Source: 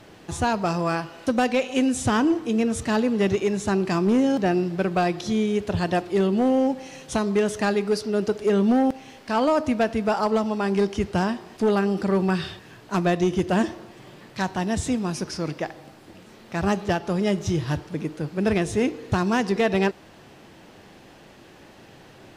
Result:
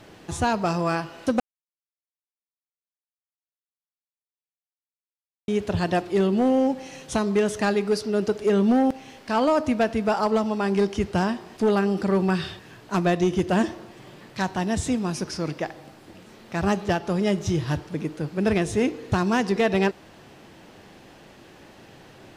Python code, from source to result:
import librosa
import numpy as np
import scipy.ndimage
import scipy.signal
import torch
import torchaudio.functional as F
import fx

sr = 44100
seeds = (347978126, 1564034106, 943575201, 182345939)

y = fx.edit(x, sr, fx.silence(start_s=1.4, length_s=4.08), tone=tone)